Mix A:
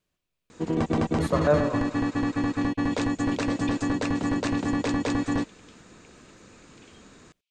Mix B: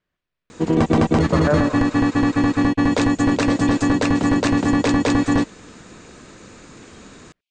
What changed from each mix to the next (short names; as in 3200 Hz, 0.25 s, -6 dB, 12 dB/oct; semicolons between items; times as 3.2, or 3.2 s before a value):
speech: add synth low-pass 1900 Hz, resonance Q 2; first sound +8.5 dB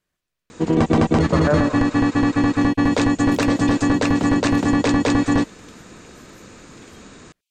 second sound: remove LPF 3500 Hz 12 dB/oct